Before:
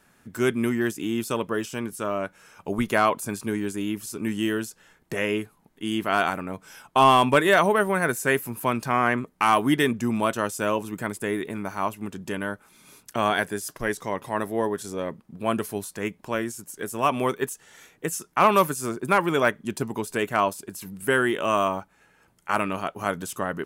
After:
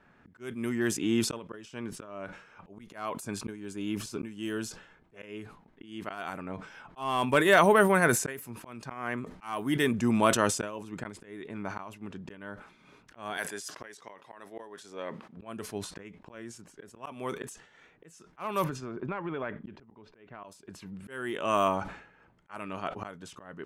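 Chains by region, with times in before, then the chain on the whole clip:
0:03.32–0:05.26: high-shelf EQ 12,000 Hz +10 dB + notch filter 1,900 Hz, Q 13
0:13.37–0:15.37: high-pass filter 630 Hz 6 dB per octave + high-shelf EQ 5,000 Hz +6.5 dB
0:18.64–0:20.44: high-frequency loss of the air 230 metres + downward compressor 16 to 1, threshold −30 dBFS
whole clip: low-pass that shuts in the quiet parts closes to 2,300 Hz, open at −18 dBFS; volume swells 746 ms; level that may fall only so fast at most 91 dB per second

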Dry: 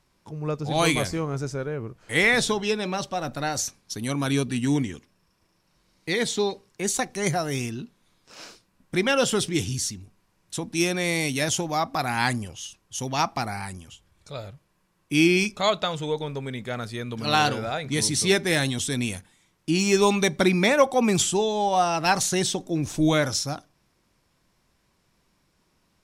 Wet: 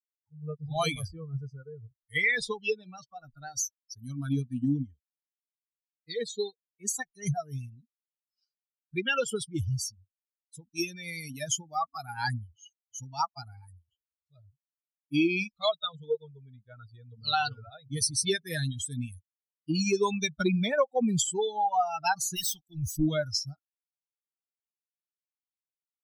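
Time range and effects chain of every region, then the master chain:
0:22.36–0:22.97: guitar amp tone stack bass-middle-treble 5-5-5 + leveller curve on the samples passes 5
whole clip: spectral dynamics exaggerated over time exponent 3; downward compressor 2.5 to 1, threshold −31 dBFS; level +5.5 dB

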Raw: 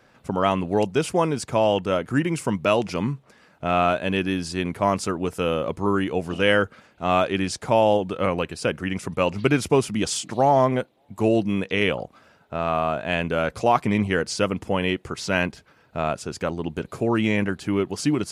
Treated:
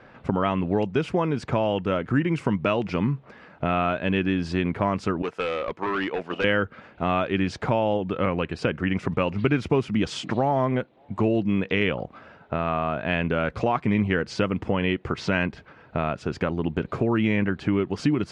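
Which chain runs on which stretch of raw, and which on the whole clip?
0:05.22–0:06.44: noise gate −29 dBFS, range −7 dB + meter weighting curve A + hard clipping −24.5 dBFS
whole clip: low-pass filter 2,600 Hz 12 dB per octave; downward compressor 2 to 1, threshold −30 dBFS; dynamic equaliser 690 Hz, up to −5 dB, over −37 dBFS, Q 0.81; level +7.5 dB

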